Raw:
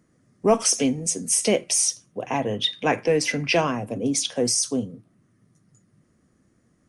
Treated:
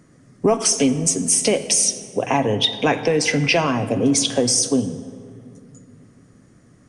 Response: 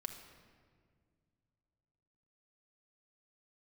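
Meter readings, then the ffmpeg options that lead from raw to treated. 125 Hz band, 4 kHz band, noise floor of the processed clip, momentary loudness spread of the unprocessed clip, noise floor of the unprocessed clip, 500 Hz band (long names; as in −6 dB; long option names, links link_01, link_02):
+7.0 dB, +5.0 dB, −52 dBFS, 7 LU, −65 dBFS, +3.5 dB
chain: -filter_complex "[0:a]aresample=22050,aresample=44100,acompressor=threshold=-28dB:ratio=3,asplit=2[link_01][link_02];[1:a]atrim=start_sample=2205,asetrate=29106,aresample=44100[link_03];[link_02][link_03]afir=irnorm=-1:irlink=0,volume=-2dB[link_04];[link_01][link_04]amix=inputs=2:normalize=0,volume=6.5dB"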